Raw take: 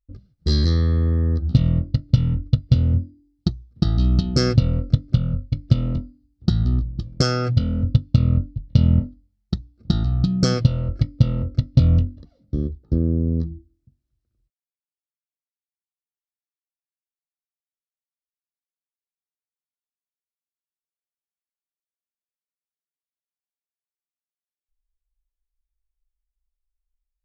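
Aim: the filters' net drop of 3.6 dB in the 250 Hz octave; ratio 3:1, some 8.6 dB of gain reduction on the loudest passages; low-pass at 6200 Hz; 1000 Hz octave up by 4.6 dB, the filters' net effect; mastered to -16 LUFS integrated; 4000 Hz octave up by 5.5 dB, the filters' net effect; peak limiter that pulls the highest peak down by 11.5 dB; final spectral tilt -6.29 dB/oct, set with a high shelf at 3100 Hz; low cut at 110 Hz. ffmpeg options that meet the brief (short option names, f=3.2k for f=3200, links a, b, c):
-af "highpass=110,lowpass=6.2k,equalizer=f=250:t=o:g=-5,equalizer=f=1k:t=o:g=6,highshelf=f=3.1k:g=3,equalizer=f=4k:t=o:g=5.5,acompressor=threshold=-24dB:ratio=3,volume=15.5dB,alimiter=limit=-4dB:level=0:latency=1"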